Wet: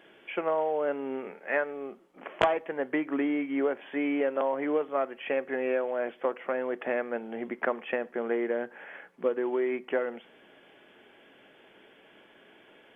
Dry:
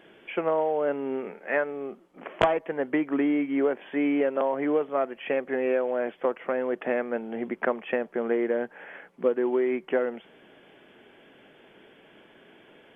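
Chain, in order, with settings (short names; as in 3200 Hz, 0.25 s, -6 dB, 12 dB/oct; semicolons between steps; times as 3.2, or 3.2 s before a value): low shelf 330 Hz -6.5 dB; on a send: reverb RT60 0.40 s, pre-delay 3 ms, DRR 16.5 dB; on the sum: gain -1 dB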